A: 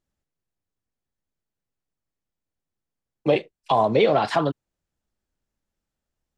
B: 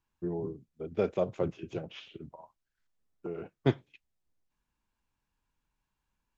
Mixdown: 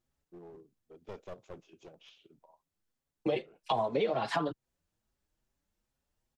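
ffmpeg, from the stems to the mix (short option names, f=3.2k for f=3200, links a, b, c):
-filter_complex "[0:a]asplit=2[a][b];[b]adelay=5.9,afreqshift=2.4[c];[a][c]amix=inputs=2:normalize=1,volume=2.5dB[d];[1:a]highpass=f=1.1k:p=1,equalizer=f=1.8k:t=o:w=1.6:g=-10.5,aeval=exprs='clip(val(0),-1,0.00531)':c=same,adelay=100,volume=-4dB[e];[d][e]amix=inputs=2:normalize=0,acompressor=threshold=-31dB:ratio=3"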